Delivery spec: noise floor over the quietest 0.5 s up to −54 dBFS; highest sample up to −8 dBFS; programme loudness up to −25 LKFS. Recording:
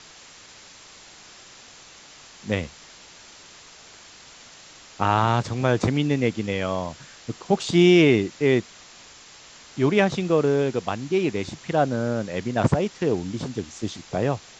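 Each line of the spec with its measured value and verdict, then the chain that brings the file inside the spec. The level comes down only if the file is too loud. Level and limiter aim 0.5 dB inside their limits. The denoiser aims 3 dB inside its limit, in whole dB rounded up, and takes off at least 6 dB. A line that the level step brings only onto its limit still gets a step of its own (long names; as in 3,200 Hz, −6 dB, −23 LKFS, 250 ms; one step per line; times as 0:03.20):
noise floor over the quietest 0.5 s −47 dBFS: out of spec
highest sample −4.0 dBFS: out of spec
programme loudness −23.0 LKFS: out of spec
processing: broadband denoise 8 dB, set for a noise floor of −47 dBFS
level −2.5 dB
brickwall limiter −8.5 dBFS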